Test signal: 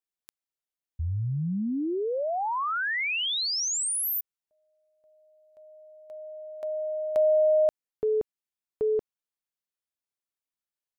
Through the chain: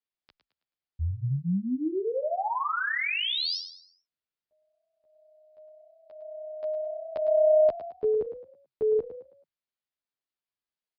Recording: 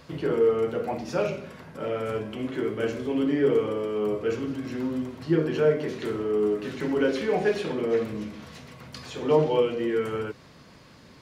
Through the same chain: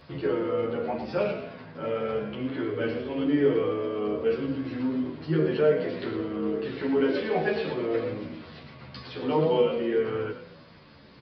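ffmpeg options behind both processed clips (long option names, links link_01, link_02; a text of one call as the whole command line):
ffmpeg -i in.wav -filter_complex "[0:a]asplit=5[link_01][link_02][link_03][link_04][link_05];[link_02]adelay=108,afreqshift=32,volume=-10dB[link_06];[link_03]adelay=216,afreqshift=64,volume=-18.9dB[link_07];[link_04]adelay=324,afreqshift=96,volume=-27.7dB[link_08];[link_05]adelay=432,afreqshift=128,volume=-36.6dB[link_09];[link_01][link_06][link_07][link_08][link_09]amix=inputs=5:normalize=0,aresample=11025,aresample=44100,asplit=2[link_10][link_11];[link_11]adelay=11,afreqshift=-0.91[link_12];[link_10][link_12]amix=inputs=2:normalize=1,volume=2dB" out.wav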